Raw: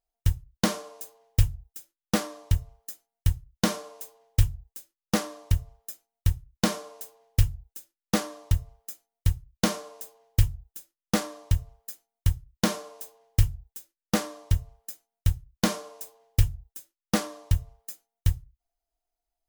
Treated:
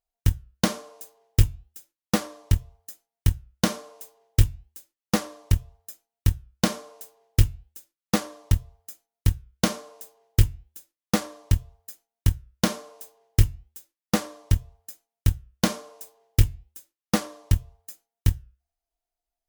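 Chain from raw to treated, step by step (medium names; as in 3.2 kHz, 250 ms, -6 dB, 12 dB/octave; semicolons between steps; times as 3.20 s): flange 1 Hz, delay 4.4 ms, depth 3.9 ms, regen -89%; Chebyshev shaper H 7 -24 dB, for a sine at -11 dBFS; trim +7.5 dB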